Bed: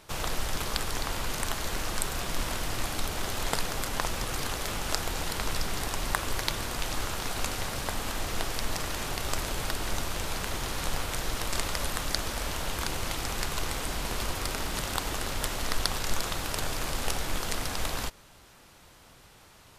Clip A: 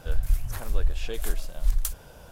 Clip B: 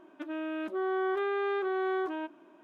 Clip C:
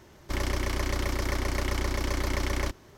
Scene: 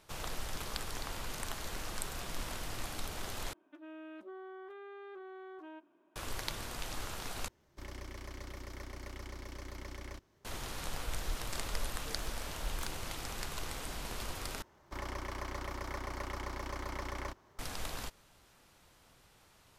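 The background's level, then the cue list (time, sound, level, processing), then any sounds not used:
bed -9 dB
3.53 s: replace with B -13 dB + peak limiter -29 dBFS
7.48 s: replace with C -17 dB
10.98 s: add A -16 dB + median filter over 3 samples
14.62 s: replace with C -14 dB + peaking EQ 990 Hz +9 dB 1.6 oct

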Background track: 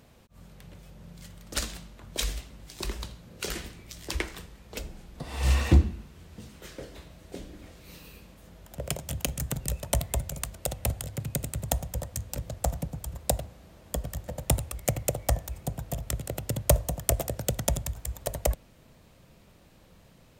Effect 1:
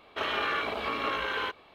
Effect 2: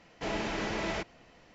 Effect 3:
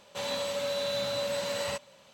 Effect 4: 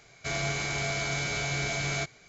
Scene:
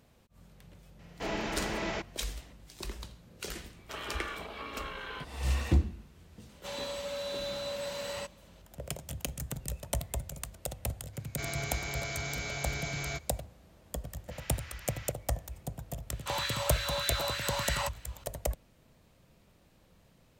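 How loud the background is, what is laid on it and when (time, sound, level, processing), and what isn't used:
background track -6.5 dB
0.99 s: add 2 -1 dB
3.73 s: add 1 -10.5 dB + tone controls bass +3 dB, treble +3 dB
6.49 s: add 3 -5.5 dB
11.13 s: add 4 -6.5 dB
14.09 s: add 2 -11 dB + high-pass 1.2 kHz 24 dB/octave
16.11 s: add 3 -0.5 dB + LFO high-pass sine 3.3 Hz 810–1800 Hz

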